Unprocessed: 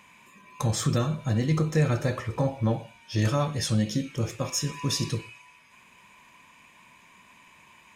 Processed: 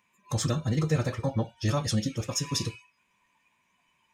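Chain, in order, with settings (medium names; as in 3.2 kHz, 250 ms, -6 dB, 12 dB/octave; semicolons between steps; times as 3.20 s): spectral noise reduction 13 dB; time stretch by phase-locked vocoder 0.52×; dynamic bell 5.5 kHz, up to +4 dB, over -48 dBFS, Q 0.8; trim -1.5 dB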